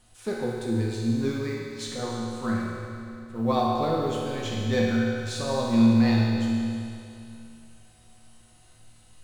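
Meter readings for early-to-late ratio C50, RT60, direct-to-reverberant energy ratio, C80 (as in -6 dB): -1.5 dB, 2.6 s, -4.5 dB, 0.0 dB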